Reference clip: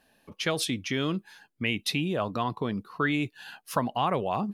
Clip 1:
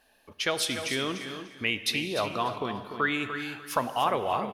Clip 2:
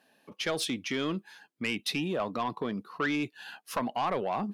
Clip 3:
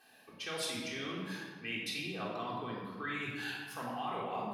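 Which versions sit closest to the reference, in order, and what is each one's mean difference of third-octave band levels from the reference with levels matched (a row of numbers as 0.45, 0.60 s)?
2, 1, 3; 3.0, 9.0, 12.0 dB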